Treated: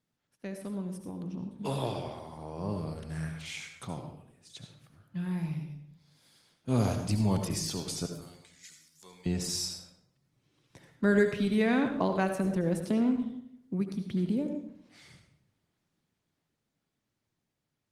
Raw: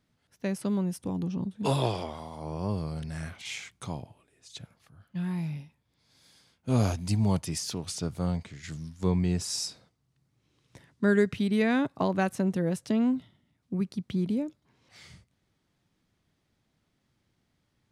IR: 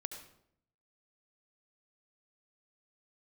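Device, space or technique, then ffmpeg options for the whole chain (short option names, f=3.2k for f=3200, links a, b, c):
far-field microphone of a smart speaker: -filter_complex "[0:a]asettb=1/sr,asplit=3[a][b][c];[a]atrim=end=8.064[d];[b]atrim=start=8.06:end=9.26,asetpts=PTS-STARTPTS,afade=t=in:d=0.004:c=qsin,afade=t=out:st=1.196:d=0.004:c=qsin,aderivative[e];[c]atrim=start=9.256[f];[d][e]acrossfade=d=0.004:c1=hsin:c2=qsin[g];[g][f]acrossfade=d=0.004:c1=qsin:c2=hsin[h];[1:a]atrim=start_sample=2205[i];[h][i]afir=irnorm=-1:irlink=0,highpass=100,dynaudnorm=f=140:g=31:m=7dB,volume=-5.5dB" -ar 48000 -c:a libopus -b:a 24k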